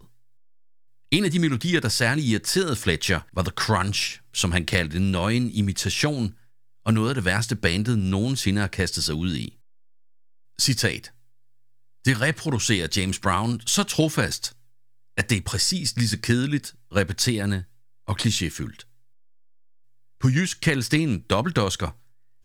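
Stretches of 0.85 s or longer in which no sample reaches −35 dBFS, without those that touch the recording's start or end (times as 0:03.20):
0:09.48–0:10.59
0:11.07–0:12.05
0:18.82–0:20.22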